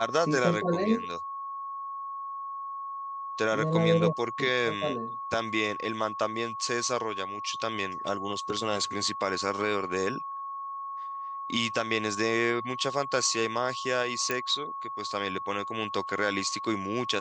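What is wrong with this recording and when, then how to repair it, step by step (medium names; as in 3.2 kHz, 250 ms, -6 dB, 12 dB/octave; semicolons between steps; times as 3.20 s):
whine 1.1 kHz -34 dBFS
14.31 s: pop -13 dBFS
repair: de-click; band-stop 1.1 kHz, Q 30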